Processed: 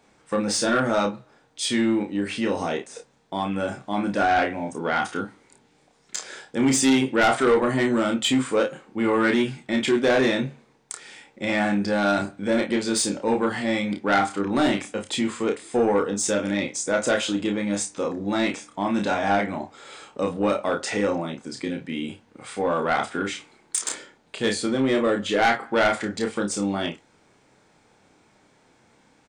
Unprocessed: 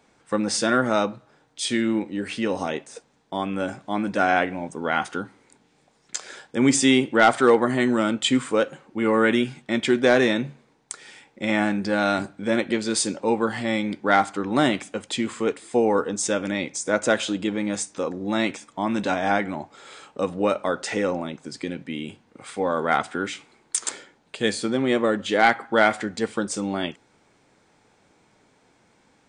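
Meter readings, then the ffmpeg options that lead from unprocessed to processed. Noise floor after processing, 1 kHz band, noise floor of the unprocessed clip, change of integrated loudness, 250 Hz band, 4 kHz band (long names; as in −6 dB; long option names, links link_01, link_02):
−60 dBFS, −1.0 dB, −62 dBFS, −0.5 dB, 0.0 dB, 0.0 dB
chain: -af "aecho=1:1:30|53:0.596|0.188,asoftclip=type=tanh:threshold=-13dB"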